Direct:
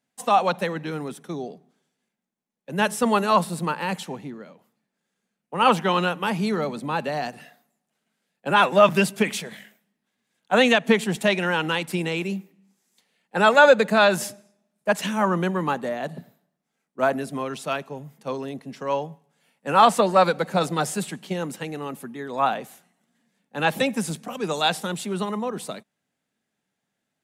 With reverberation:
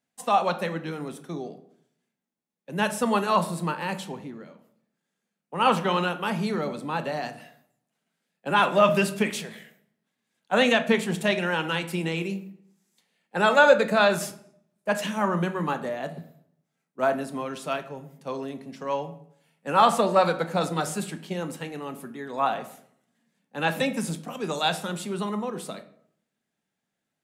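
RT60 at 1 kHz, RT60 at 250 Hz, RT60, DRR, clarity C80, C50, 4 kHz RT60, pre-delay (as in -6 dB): 0.65 s, 0.80 s, 0.65 s, 8.5 dB, 17.0 dB, 13.5 dB, 0.40 s, 7 ms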